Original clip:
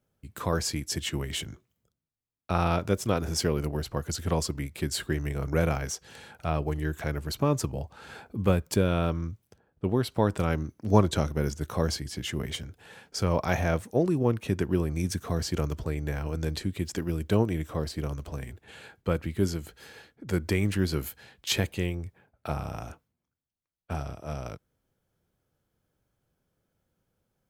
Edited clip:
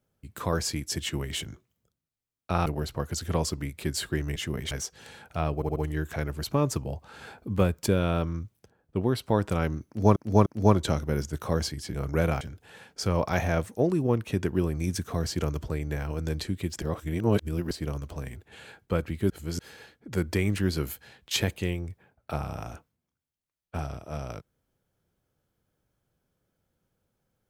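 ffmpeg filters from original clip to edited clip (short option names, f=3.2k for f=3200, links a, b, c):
-filter_complex "[0:a]asplit=15[a][b][c][d][e][f][g][h][i][j][k][l][m][n][o];[a]atrim=end=2.662[p];[b]atrim=start=3.628:end=5.332[q];[c]atrim=start=12.218:end=12.572[r];[d]atrim=start=5.798:end=6.712[s];[e]atrim=start=6.638:end=6.712[t];[f]atrim=start=6.638:end=6.712[u];[g]atrim=start=6.638:end=11.042[v];[h]atrim=start=10.738:end=11.042[w];[i]atrim=start=10.738:end=12.222[x];[j]atrim=start=5.328:end=5.802[y];[k]atrim=start=12.568:end=16.982[z];[l]atrim=start=16.978:end=17.872,asetpts=PTS-STARTPTS,areverse[aa];[m]atrim=start=17.868:end=19.462[ab];[n]atrim=start=19.458:end=19.752,asetpts=PTS-STARTPTS,areverse[ac];[o]atrim=start=19.748[ad];[p][q]acrossfade=d=0.004:c1=hsin:c2=hsin[ae];[ae][r]acrossfade=d=0.004:c1=hsin:c2=hsin[af];[af][s]acrossfade=d=0.004:c1=hsin:c2=hsin[ag];[ag][t]acrossfade=d=0.004:c1=hsin:c2=hsin[ah];[ah][u]acrossfade=d=0.004:c1=hsin:c2=hsin[ai];[ai][v]acrossfade=d=0.004:c1=hsin:c2=hsin[aj];[aj][w]acrossfade=d=0.004:c1=hsin:c2=hsin[ak];[ak][x]acrossfade=d=0.004:c1=hsin:c2=hsin[al];[al][y]acrossfade=d=0.004:c1=hsin:c2=hsin[am];[am][z]acrossfade=d=0.004:c1=hsin:c2=hsin[an];[an][aa]acrossfade=d=0.004:c1=hsin:c2=hsin[ao];[ao][ab]acrossfade=d=0.004:c1=hsin:c2=hsin[ap];[ap][ac]acrossfade=d=0.004:c1=hsin:c2=hsin[aq];[aq][ad]acrossfade=d=0.004:c1=hsin:c2=hsin"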